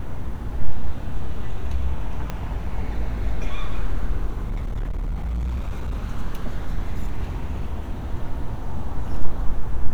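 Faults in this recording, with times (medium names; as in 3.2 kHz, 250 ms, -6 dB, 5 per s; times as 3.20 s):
2.30 s: pop -14 dBFS
4.50–5.94 s: clipped -22.5 dBFS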